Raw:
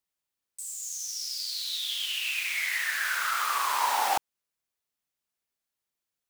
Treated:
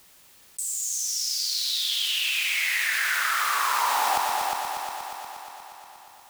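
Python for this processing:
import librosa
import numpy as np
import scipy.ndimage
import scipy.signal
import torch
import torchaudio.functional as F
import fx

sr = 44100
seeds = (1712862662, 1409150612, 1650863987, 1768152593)

y = fx.echo_heads(x, sr, ms=119, heads='all three', feedback_pct=45, wet_db=-9.5)
y = fx.env_flatten(y, sr, amount_pct=50)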